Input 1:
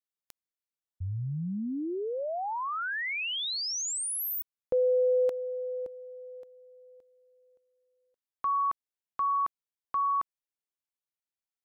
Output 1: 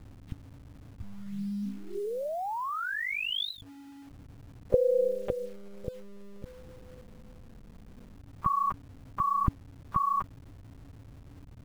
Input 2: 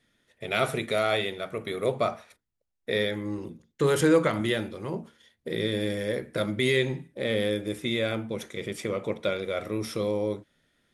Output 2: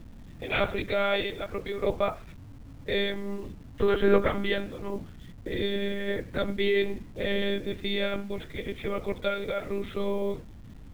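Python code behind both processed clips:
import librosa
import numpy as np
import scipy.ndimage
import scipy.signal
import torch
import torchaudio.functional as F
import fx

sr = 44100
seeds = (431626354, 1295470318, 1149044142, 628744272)

p1 = fx.add_hum(x, sr, base_hz=60, snr_db=16)
p2 = fx.lpc_monotone(p1, sr, seeds[0], pitch_hz=200.0, order=16)
p3 = fx.quant_dither(p2, sr, seeds[1], bits=8, dither='none')
p4 = p2 + (p3 * 10.0 ** (-3.5 / 20.0))
y = p4 * 10.0 ** (-5.0 / 20.0)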